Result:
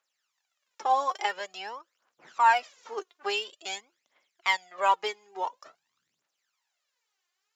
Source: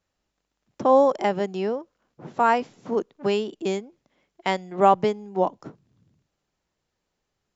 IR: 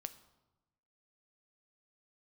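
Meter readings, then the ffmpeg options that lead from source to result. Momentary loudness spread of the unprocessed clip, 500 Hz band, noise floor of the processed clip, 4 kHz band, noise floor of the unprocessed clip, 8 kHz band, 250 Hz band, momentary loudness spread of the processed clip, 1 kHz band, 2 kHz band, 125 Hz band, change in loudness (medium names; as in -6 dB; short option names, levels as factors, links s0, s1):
11 LU, -14.0 dB, -83 dBFS, +3.0 dB, -81 dBFS, no reading, under -20 dB, 17 LU, -3.0 dB, +3.0 dB, under -30 dB, -5.5 dB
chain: -af "highpass=1200,aphaser=in_gain=1:out_gain=1:delay=2.9:decay=0.7:speed=0.48:type=triangular"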